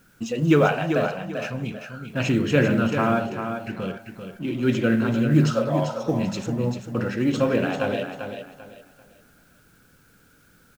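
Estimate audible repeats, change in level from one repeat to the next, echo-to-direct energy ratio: 3, -11.0 dB, -7.0 dB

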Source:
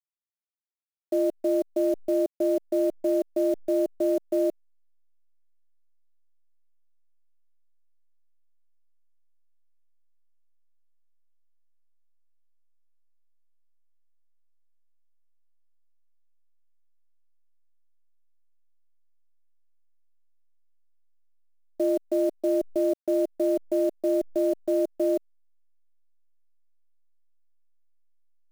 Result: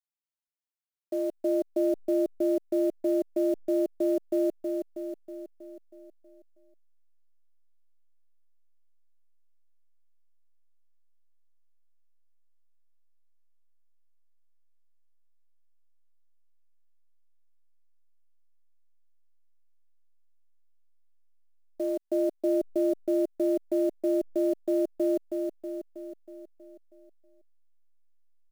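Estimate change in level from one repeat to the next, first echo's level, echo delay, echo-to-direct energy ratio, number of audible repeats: -5.0 dB, -5.0 dB, 0.32 s, -3.5 dB, 6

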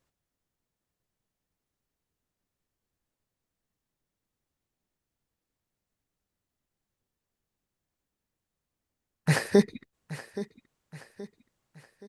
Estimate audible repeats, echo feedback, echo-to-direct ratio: 3, 43%, -14.0 dB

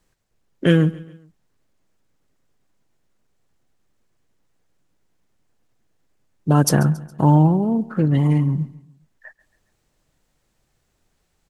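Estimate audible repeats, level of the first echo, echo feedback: 3, -20.0 dB, 44%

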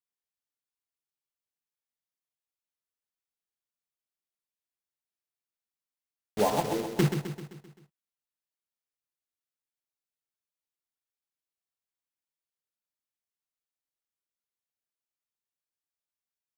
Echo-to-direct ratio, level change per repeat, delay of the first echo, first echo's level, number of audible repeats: -6.0 dB, -5.5 dB, 0.13 s, -7.5 dB, 5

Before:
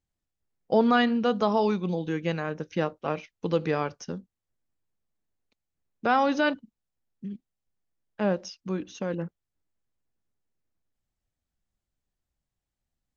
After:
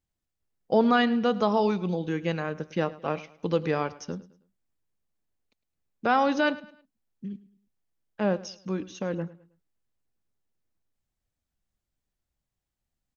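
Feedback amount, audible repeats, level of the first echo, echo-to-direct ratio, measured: 36%, 2, -19.0 dB, -18.5 dB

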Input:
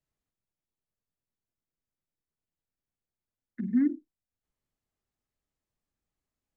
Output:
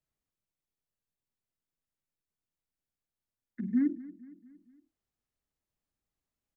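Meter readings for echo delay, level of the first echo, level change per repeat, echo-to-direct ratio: 0.231 s, -18.5 dB, -5.5 dB, -17.0 dB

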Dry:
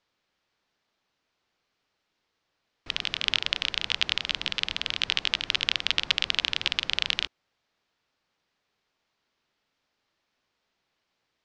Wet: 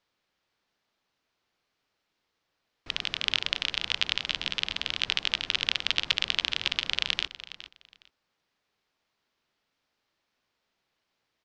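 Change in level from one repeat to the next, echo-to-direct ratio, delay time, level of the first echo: -14.0 dB, -15.0 dB, 0.414 s, -15.0 dB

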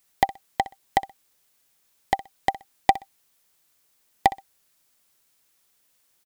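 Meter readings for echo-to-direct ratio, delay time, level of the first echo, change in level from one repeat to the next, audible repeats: -17.5 dB, 63 ms, -17.5 dB, -13.5 dB, 2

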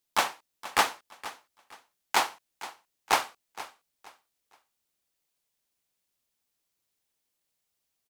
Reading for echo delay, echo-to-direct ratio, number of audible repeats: 0.468 s, -15.5 dB, 2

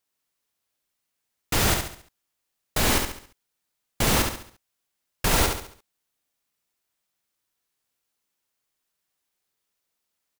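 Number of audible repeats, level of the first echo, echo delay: 4, -5.0 dB, 69 ms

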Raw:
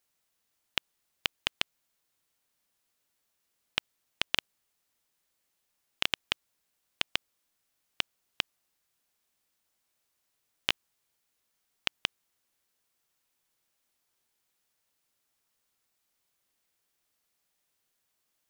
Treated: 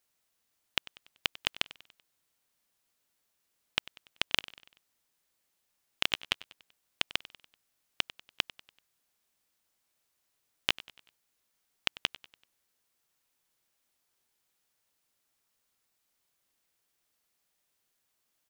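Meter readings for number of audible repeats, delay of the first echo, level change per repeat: 3, 96 ms, -6.5 dB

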